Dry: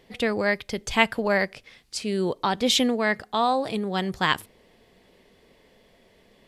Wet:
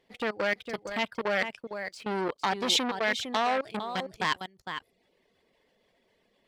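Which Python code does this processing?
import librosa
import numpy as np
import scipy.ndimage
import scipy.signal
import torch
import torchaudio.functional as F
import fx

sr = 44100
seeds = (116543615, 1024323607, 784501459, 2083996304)

y = fx.high_shelf(x, sr, hz=8600.0, db=-7.5)
y = fx.leveller(y, sr, passes=1)
y = fx.dereverb_blind(y, sr, rt60_s=0.78)
y = fx.level_steps(y, sr, step_db=23)
y = fx.low_shelf(y, sr, hz=170.0, db=-9.0)
y = y + 10.0 ** (-11.0 / 20.0) * np.pad(y, (int(456 * sr / 1000.0), 0))[:len(y)]
y = fx.transformer_sat(y, sr, knee_hz=2400.0)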